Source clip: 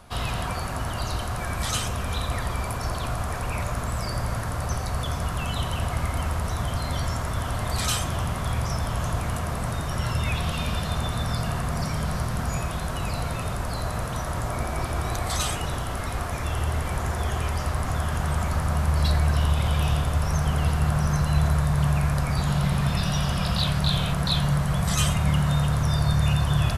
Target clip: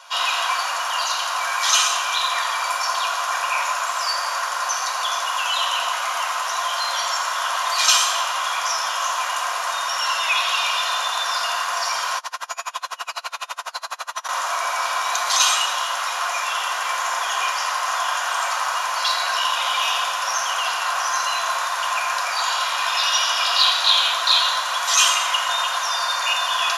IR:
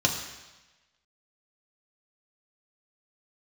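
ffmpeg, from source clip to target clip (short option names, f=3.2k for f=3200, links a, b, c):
-filter_complex "[0:a]highpass=f=860:w=0.5412,highpass=f=860:w=1.3066[a];[1:a]atrim=start_sample=2205[b];[a][b]afir=irnorm=-1:irlink=0,asettb=1/sr,asplit=3[c][d][e];[c]atrim=end=12.184[f];[d]atrim=start=12.18:end=14.29,asetpts=PTS-STARTPTS,afade=t=in:d=0.004:c=qsin,afade=t=out:st=2.106:d=0.004:c=qsin,aeval=exprs='val(0)*pow(10,-31*(0.5-0.5*cos(2*PI*12*n/s))/20)':c=same[g];[e]atrim=start=14.286[h];[f][g]acrossfade=d=0.004:c1=hsin:c2=qsin[i];[i][h]acrossfade=d=0.004:c1=qsin:c2=hsin"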